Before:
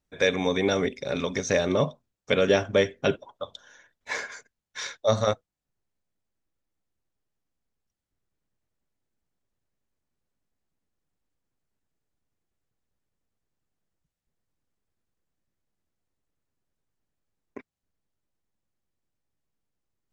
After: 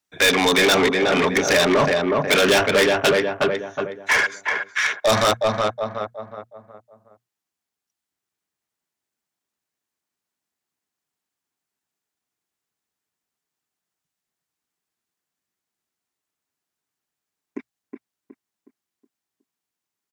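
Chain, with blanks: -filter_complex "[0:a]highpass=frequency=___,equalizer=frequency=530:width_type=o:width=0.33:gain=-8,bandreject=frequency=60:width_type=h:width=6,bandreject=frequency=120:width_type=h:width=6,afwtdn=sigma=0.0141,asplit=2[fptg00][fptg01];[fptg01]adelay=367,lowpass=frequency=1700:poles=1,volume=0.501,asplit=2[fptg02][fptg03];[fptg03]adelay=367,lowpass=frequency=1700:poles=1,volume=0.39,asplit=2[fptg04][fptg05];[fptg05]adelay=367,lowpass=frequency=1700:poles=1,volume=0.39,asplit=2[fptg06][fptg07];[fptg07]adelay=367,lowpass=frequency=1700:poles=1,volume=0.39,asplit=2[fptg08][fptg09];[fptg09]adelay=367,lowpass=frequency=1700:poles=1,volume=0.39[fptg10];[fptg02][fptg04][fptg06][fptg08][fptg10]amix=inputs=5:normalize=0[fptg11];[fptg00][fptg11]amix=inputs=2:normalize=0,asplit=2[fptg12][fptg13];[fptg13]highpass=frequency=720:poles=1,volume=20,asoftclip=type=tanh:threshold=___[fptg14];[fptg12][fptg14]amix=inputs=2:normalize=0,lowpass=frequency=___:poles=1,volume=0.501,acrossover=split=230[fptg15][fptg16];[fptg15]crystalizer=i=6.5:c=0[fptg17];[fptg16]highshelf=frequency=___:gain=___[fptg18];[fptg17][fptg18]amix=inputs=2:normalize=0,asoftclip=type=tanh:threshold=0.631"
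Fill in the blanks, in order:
46, 0.398, 7300, 6400, 9.5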